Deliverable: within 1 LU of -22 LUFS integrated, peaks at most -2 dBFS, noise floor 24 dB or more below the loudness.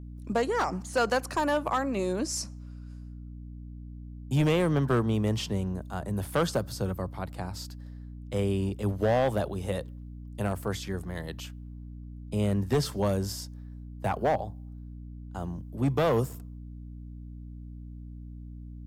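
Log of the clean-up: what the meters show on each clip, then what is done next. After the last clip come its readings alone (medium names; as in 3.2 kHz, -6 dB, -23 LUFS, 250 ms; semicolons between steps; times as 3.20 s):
clipped samples 0.8%; clipping level -19.0 dBFS; hum 60 Hz; highest harmonic 300 Hz; hum level -39 dBFS; loudness -29.5 LUFS; peak level -19.0 dBFS; loudness target -22.0 LUFS
-> clip repair -19 dBFS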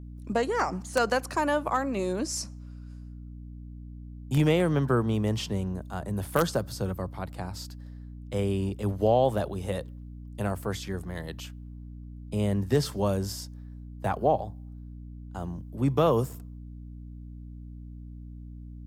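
clipped samples 0.0%; hum 60 Hz; highest harmonic 240 Hz; hum level -39 dBFS
-> hum notches 60/120/180/240 Hz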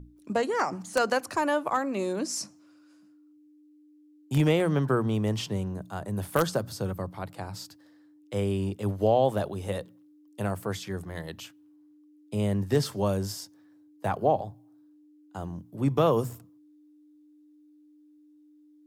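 hum not found; loudness -29.0 LUFS; peak level -10.0 dBFS; loudness target -22.0 LUFS
-> trim +7 dB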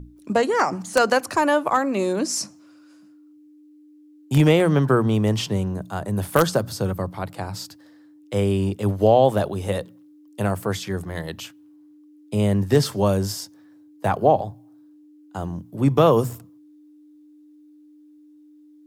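loudness -22.0 LUFS; peak level -3.0 dBFS; noise floor -51 dBFS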